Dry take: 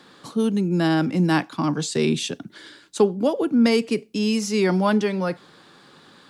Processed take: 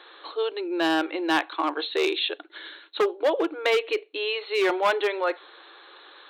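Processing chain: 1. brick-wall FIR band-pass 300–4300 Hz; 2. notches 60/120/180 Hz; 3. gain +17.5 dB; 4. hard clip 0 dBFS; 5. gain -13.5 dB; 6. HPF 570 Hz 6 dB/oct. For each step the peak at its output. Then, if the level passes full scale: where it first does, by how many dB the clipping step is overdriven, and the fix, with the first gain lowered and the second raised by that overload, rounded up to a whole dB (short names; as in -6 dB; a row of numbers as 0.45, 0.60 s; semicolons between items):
-8.0, -8.0, +9.5, 0.0, -13.5, -10.5 dBFS; step 3, 9.5 dB; step 3 +7.5 dB, step 5 -3.5 dB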